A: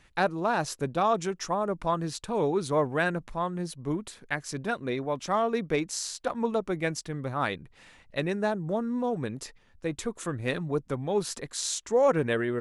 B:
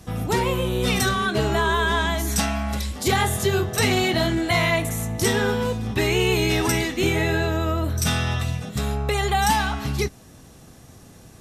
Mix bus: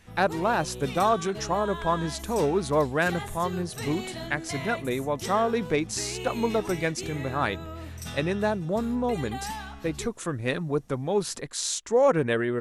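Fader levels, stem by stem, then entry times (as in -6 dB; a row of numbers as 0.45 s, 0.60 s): +2.0 dB, -15.5 dB; 0.00 s, 0.00 s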